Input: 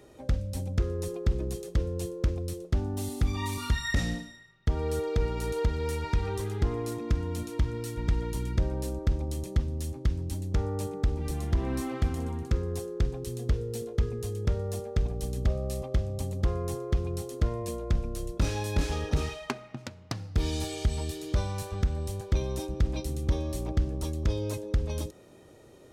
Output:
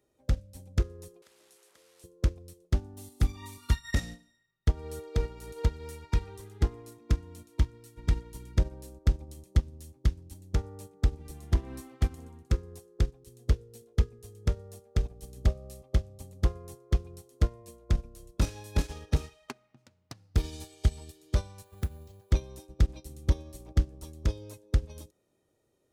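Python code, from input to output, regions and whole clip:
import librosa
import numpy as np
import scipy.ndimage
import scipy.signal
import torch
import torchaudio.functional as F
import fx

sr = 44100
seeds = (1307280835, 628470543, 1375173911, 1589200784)

y = fx.chain(x, sr, fx.delta_mod(bps=64000, step_db=-36.0),
    fx.highpass(hz=630.0, slope=12),
    fx.band_squash(depth_pct=40), at=(1.22, 2.04))
y = fx.chain(y, sr, fx.highpass(hz=60.0, slope=24),
    fx.resample_bad(factor=4, down='filtered', up='hold'), at=(21.64, 22.31))
y = fx.high_shelf(y, sr, hz=7000.0, db=8.0)
y = fx.upward_expand(y, sr, threshold_db=-36.0, expansion=2.5)
y = y * librosa.db_to_amplitude(4.0)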